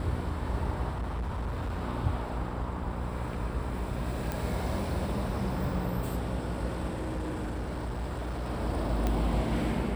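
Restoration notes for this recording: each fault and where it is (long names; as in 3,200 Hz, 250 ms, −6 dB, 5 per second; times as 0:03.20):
mains buzz 60 Hz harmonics 10 −36 dBFS
0:00.90–0:01.82: clipping −29.5 dBFS
0:04.32: click
0:06.89–0:08.48: clipping −30 dBFS
0:09.07: click −16 dBFS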